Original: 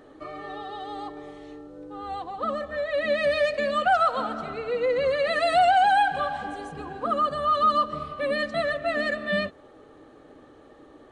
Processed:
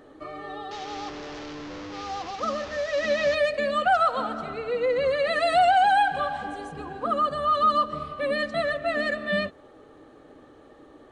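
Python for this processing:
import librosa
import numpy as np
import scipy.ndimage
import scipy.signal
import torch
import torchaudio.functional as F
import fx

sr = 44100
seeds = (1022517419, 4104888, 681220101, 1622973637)

y = fx.delta_mod(x, sr, bps=32000, step_db=-31.5, at=(0.71, 3.35))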